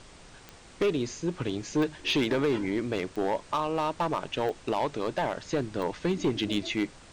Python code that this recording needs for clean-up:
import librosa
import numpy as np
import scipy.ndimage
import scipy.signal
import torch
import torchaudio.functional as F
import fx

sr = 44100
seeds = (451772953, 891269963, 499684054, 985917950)

y = fx.fix_declip(x, sr, threshold_db=-20.5)
y = fx.fix_declick_ar(y, sr, threshold=10.0)
y = fx.noise_reduce(y, sr, print_start_s=0.28, print_end_s=0.78, reduce_db=24.0)